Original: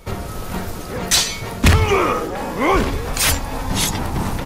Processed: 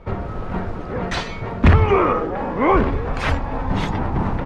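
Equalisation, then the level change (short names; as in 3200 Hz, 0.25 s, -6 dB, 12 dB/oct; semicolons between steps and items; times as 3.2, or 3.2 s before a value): LPF 1700 Hz 12 dB/oct; +1.0 dB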